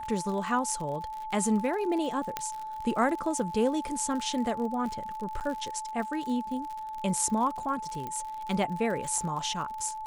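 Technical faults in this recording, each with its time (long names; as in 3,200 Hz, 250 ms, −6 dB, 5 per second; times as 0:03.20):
surface crackle 62 per second −35 dBFS
whistle 870 Hz −35 dBFS
0:02.37: click −13 dBFS
0:05.40–0:05.41: drop-out 8.5 ms
0:08.07: click −23 dBFS
0:09.18: drop-out 3.1 ms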